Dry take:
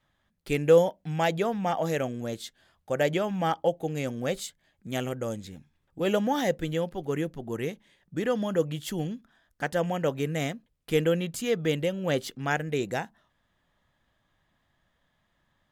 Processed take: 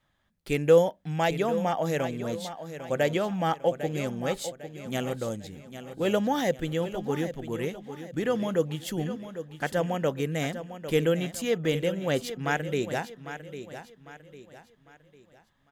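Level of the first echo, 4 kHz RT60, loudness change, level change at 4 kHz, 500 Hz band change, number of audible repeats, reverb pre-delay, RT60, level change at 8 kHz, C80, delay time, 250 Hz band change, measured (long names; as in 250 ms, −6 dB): −11.5 dB, no reverb audible, 0.0 dB, +0.5 dB, +0.5 dB, 3, no reverb audible, no reverb audible, +0.5 dB, no reverb audible, 801 ms, +0.5 dB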